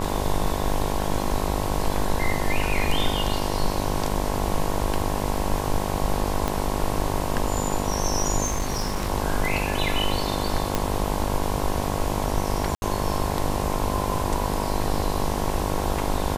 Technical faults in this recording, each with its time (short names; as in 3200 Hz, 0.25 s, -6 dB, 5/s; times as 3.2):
buzz 50 Hz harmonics 22 -28 dBFS
6.48 pop
8.44–9.1 clipped -20.5 dBFS
10.75 pop
12.75–12.82 gap 71 ms